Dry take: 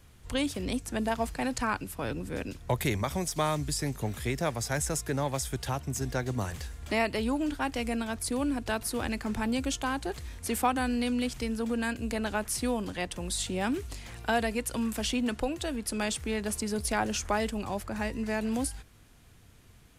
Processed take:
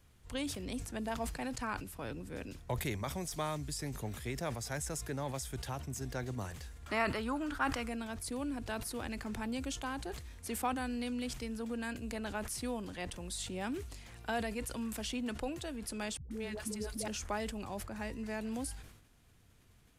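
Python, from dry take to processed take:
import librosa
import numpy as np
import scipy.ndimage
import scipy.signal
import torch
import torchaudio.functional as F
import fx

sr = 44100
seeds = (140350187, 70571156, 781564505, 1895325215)

y = fx.peak_eq(x, sr, hz=1300.0, db=13.0, octaves=0.87, at=(6.86, 7.89))
y = fx.dispersion(y, sr, late='highs', ms=139.0, hz=350.0, at=(16.17, 17.08))
y = fx.sustainer(y, sr, db_per_s=68.0)
y = F.gain(torch.from_numpy(y), -8.5).numpy()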